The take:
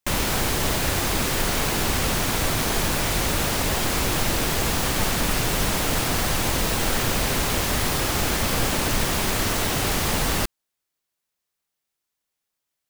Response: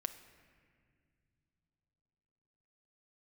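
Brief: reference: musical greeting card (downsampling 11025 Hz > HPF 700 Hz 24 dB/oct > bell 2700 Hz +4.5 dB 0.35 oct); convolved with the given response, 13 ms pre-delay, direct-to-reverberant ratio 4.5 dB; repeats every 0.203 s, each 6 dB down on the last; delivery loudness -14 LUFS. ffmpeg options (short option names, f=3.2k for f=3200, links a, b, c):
-filter_complex "[0:a]aecho=1:1:203|406|609|812|1015|1218:0.501|0.251|0.125|0.0626|0.0313|0.0157,asplit=2[a][b];[1:a]atrim=start_sample=2205,adelay=13[c];[b][c]afir=irnorm=-1:irlink=0,volume=-3.5dB[d];[a][d]amix=inputs=2:normalize=0,aresample=11025,aresample=44100,highpass=f=700:w=0.5412,highpass=f=700:w=1.3066,equalizer=f=2.7k:t=o:w=0.35:g=4.5,volume=9dB"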